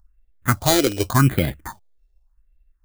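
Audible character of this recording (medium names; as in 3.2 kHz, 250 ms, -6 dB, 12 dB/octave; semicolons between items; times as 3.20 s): aliases and images of a low sample rate 2.7 kHz, jitter 0%; phasing stages 4, 0.87 Hz, lowest notch 160–1100 Hz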